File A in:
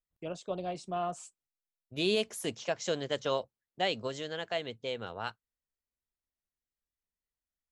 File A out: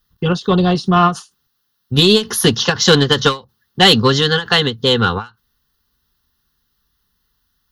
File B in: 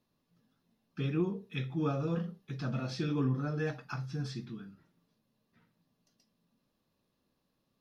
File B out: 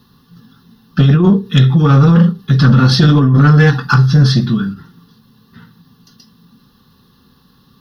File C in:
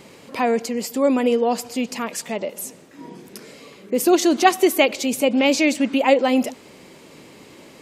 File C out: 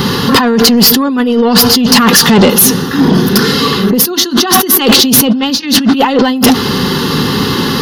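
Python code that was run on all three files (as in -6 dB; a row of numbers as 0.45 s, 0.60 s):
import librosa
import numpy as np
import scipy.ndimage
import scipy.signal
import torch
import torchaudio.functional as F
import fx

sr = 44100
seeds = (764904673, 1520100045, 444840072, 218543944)

y = fx.fixed_phaser(x, sr, hz=2300.0, stages=6)
y = fx.over_compress(y, sr, threshold_db=-35.0, ratio=-1.0)
y = fx.notch_comb(y, sr, f0_hz=320.0)
y = 10.0 ** (-31.5 / 20.0) * np.tanh(y / 10.0 ** (-31.5 / 20.0))
y = fx.end_taper(y, sr, db_per_s=230.0)
y = y * 10.0 ** (-1.5 / 20.0) / np.max(np.abs(y))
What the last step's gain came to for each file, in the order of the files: +30.0 dB, +30.5 dB, +30.0 dB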